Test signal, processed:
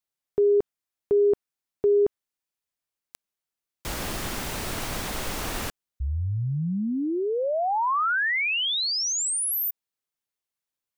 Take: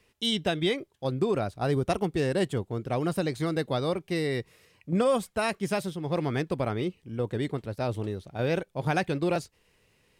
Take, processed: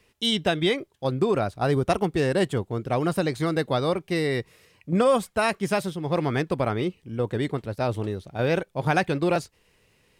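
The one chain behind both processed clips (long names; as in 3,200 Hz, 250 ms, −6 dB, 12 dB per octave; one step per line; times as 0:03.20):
dynamic equaliser 1,200 Hz, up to +3 dB, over −39 dBFS, Q 0.74
level +3 dB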